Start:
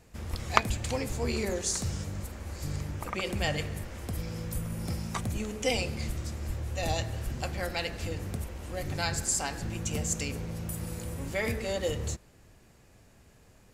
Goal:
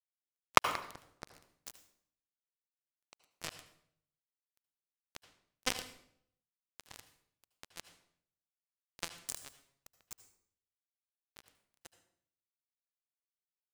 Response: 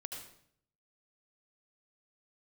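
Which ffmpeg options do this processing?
-filter_complex "[0:a]asplit=2[link_01][link_02];[link_02]adelay=180,lowpass=frequency=2400:poles=1,volume=-13dB,asplit=2[link_03][link_04];[link_04]adelay=180,lowpass=frequency=2400:poles=1,volume=0.38,asplit=2[link_05][link_06];[link_06]adelay=180,lowpass=frequency=2400:poles=1,volume=0.38,asplit=2[link_07][link_08];[link_08]adelay=180,lowpass=frequency=2400:poles=1,volume=0.38[link_09];[link_01][link_03][link_05][link_07][link_09]amix=inputs=5:normalize=0,acrusher=bits=2:mix=0:aa=0.5,asplit=2[link_10][link_11];[1:a]atrim=start_sample=2205[link_12];[link_11][link_12]afir=irnorm=-1:irlink=0,volume=-2dB[link_13];[link_10][link_13]amix=inputs=2:normalize=0,volume=-1dB"

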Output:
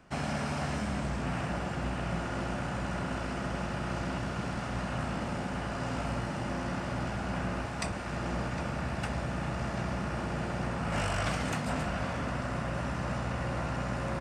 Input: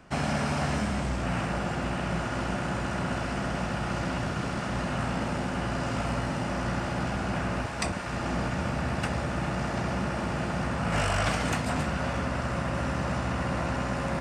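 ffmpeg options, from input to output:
ffmpeg -i in.wav -filter_complex "[0:a]asplit=2[link_01][link_02];[link_02]adelay=758,volume=-6dB,highshelf=frequency=4000:gain=-17.1[link_03];[link_01][link_03]amix=inputs=2:normalize=0,volume=-5dB" out.wav

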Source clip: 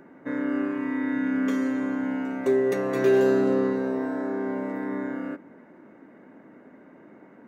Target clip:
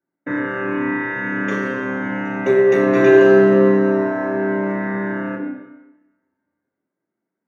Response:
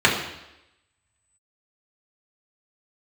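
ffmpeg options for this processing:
-filter_complex "[0:a]agate=range=-42dB:threshold=-39dB:ratio=16:detection=peak[link_01];[1:a]atrim=start_sample=2205,asetrate=37044,aresample=44100[link_02];[link_01][link_02]afir=irnorm=-1:irlink=0,volume=-12dB"

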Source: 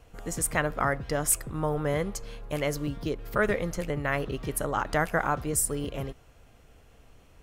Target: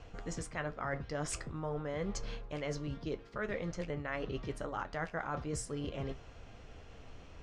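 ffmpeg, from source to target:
ffmpeg -i in.wav -af "lowpass=frequency=6200:width=0.5412,lowpass=frequency=6200:width=1.3066,areverse,acompressor=threshold=-40dB:ratio=5,areverse,flanger=delay=9.5:depth=4.3:regen=-61:speed=0.45:shape=triangular,volume=8dB" out.wav

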